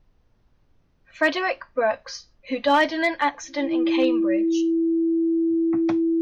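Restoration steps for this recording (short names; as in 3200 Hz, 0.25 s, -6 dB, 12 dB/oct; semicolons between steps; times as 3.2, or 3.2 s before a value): clip repair -11 dBFS; notch 330 Hz, Q 30; expander -53 dBFS, range -21 dB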